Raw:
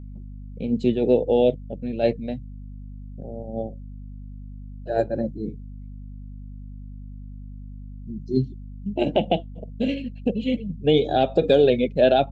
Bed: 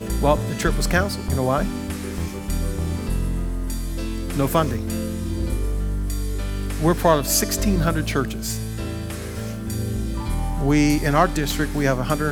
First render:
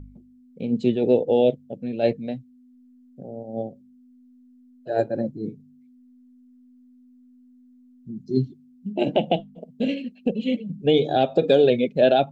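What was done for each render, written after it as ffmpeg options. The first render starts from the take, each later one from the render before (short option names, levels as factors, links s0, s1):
-af "bandreject=f=50:t=h:w=4,bandreject=f=100:t=h:w=4,bandreject=f=150:t=h:w=4,bandreject=f=200:t=h:w=4"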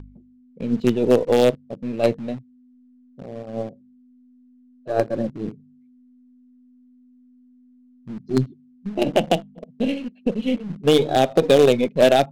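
-filter_complex "[0:a]asplit=2[s0][s1];[s1]acrusher=bits=3:dc=4:mix=0:aa=0.000001,volume=0.376[s2];[s0][s2]amix=inputs=2:normalize=0,adynamicsmooth=sensitivity=5.5:basefreq=3500"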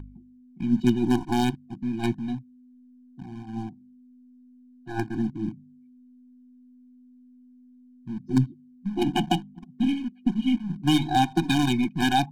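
-af "afftfilt=real='re*eq(mod(floor(b*sr/1024/360),2),0)':imag='im*eq(mod(floor(b*sr/1024/360),2),0)':win_size=1024:overlap=0.75"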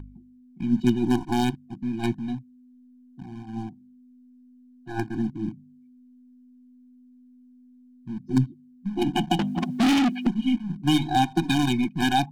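-filter_complex "[0:a]asettb=1/sr,asplit=3[s0][s1][s2];[s0]atrim=end=9.394[s3];[s1]atrim=start=9.39:end=10.27,asetpts=PTS-STARTPTS,afade=t=in:d=0.004:c=qsin,afade=t=out:st=0.876:d=0.004:c=qsin,asplit=2[s4][s5];[s5]highpass=f=720:p=1,volume=70.8,asoftclip=type=tanh:threshold=0.224[s6];[s4][s6]amix=inputs=2:normalize=0,lowpass=f=5500:p=1,volume=0.501[s7];[s2]atrim=start=10.266[s8];[s3][s7]acrossfade=d=0.004:c1=hsin:c2=qsin[s9];[s9][s8]acrossfade=d=0.004:c1=qsin:c2=hsin"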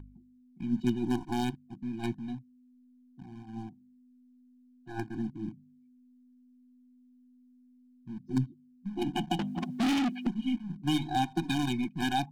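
-af "volume=0.422"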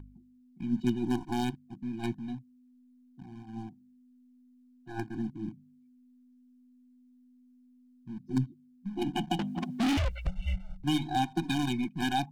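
-filter_complex "[0:a]asettb=1/sr,asplit=3[s0][s1][s2];[s0]atrim=end=9.974[s3];[s1]atrim=start=9.97:end=10.84,asetpts=PTS-STARTPTS,afade=t=in:d=0.004:c=qsin,afade=t=out:st=0.866:d=0.004:c=qsin,afreqshift=-190[s4];[s2]atrim=start=10.836[s5];[s3][s4]acrossfade=d=0.004:c1=hsin:c2=qsin[s6];[s6][s5]acrossfade=d=0.004:c1=qsin:c2=hsin"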